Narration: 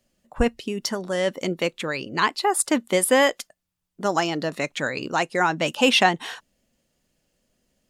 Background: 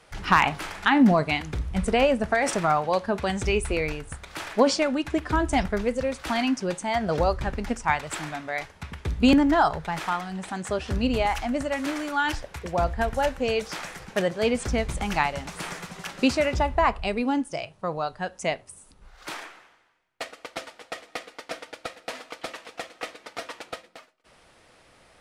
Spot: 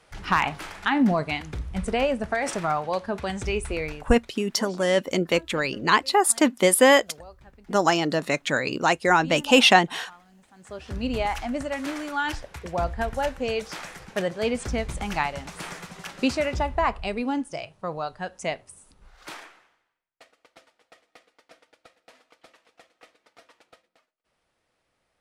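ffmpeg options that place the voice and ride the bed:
ffmpeg -i stem1.wav -i stem2.wav -filter_complex "[0:a]adelay=3700,volume=2dB[link_01];[1:a]volume=17.5dB,afade=type=out:start_time=3.84:duration=0.54:silence=0.105925,afade=type=in:start_time=10.55:duration=0.64:silence=0.0944061,afade=type=out:start_time=19.09:duration=1.06:silence=0.149624[link_02];[link_01][link_02]amix=inputs=2:normalize=0" out.wav

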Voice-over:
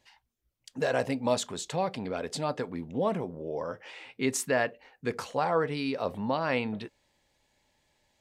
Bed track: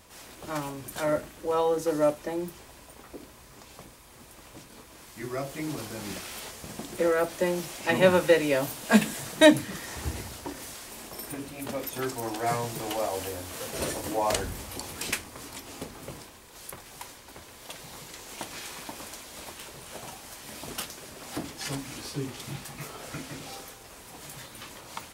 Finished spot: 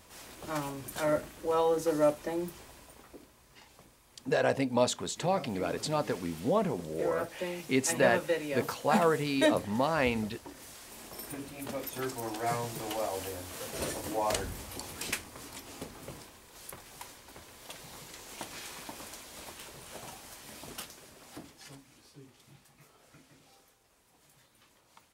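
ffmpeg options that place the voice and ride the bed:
ffmpeg -i stem1.wav -i stem2.wav -filter_complex "[0:a]adelay=3500,volume=0.5dB[link_01];[1:a]volume=4dB,afade=type=out:start_time=2.62:duration=0.68:silence=0.398107,afade=type=in:start_time=10.5:duration=0.68:silence=0.501187,afade=type=out:start_time=20.17:duration=1.69:silence=0.158489[link_02];[link_01][link_02]amix=inputs=2:normalize=0" out.wav

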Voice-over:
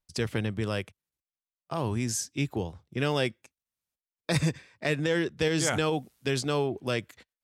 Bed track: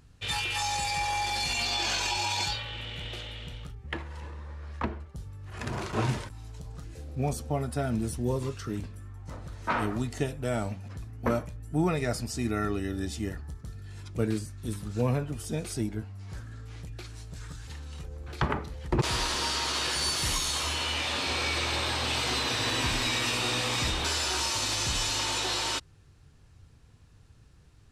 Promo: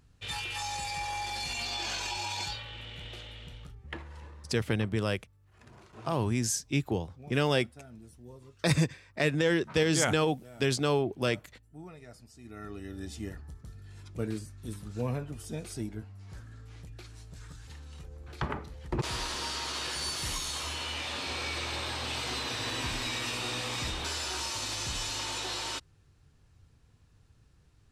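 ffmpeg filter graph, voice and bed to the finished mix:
ffmpeg -i stem1.wav -i stem2.wav -filter_complex "[0:a]adelay=4350,volume=0.5dB[link_01];[1:a]volume=9.5dB,afade=type=out:start_time=4.16:duration=0.73:silence=0.177828,afade=type=in:start_time=12.42:duration=0.79:silence=0.177828[link_02];[link_01][link_02]amix=inputs=2:normalize=0" out.wav

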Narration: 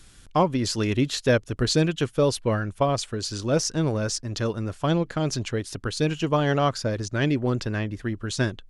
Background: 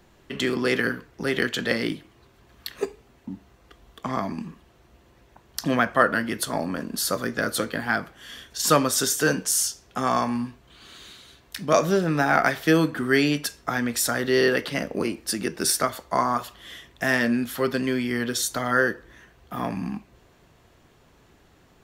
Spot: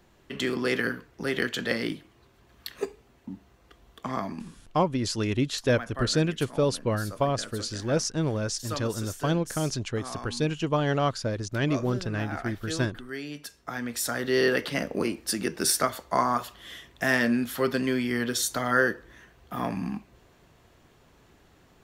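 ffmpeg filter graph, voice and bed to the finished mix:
ffmpeg -i stem1.wav -i stem2.wav -filter_complex "[0:a]adelay=4400,volume=-3dB[link_01];[1:a]volume=11.5dB,afade=type=out:start_time=4.15:duration=0.98:silence=0.223872,afade=type=in:start_time=13.26:duration=1.43:silence=0.177828[link_02];[link_01][link_02]amix=inputs=2:normalize=0" out.wav

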